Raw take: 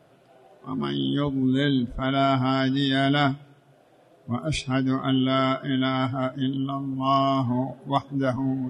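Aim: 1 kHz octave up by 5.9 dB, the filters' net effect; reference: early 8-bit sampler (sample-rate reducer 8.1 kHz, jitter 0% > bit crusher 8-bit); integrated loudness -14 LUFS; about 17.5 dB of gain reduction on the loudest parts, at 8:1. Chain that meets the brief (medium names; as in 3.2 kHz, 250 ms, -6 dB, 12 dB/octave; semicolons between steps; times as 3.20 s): peaking EQ 1 kHz +8 dB; compression 8:1, threshold -30 dBFS; sample-rate reducer 8.1 kHz, jitter 0%; bit crusher 8-bit; trim +19.5 dB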